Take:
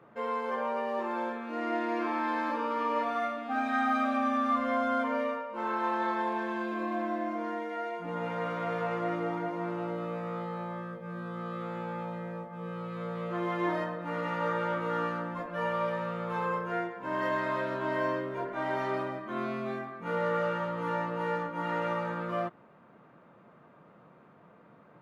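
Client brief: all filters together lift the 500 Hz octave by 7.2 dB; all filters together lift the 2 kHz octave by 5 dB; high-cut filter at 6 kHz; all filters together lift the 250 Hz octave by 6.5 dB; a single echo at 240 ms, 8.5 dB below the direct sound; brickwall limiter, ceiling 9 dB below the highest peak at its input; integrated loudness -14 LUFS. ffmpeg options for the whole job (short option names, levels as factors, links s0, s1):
-af "lowpass=6000,equalizer=f=250:t=o:g=6,equalizer=f=500:t=o:g=7,equalizer=f=2000:t=o:g=6,alimiter=limit=0.0841:level=0:latency=1,aecho=1:1:240:0.376,volume=5.96"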